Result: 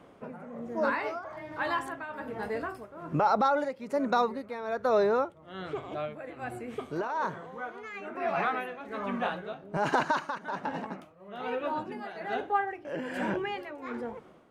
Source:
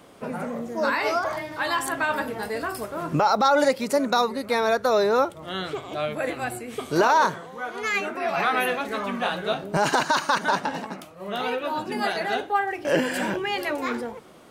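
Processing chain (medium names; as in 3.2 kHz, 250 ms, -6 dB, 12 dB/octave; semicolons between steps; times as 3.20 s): resonant high shelf 6.3 kHz +12 dB, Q 1.5; tremolo 1.2 Hz, depth 73%; distance through air 260 m; trim -2.5 dB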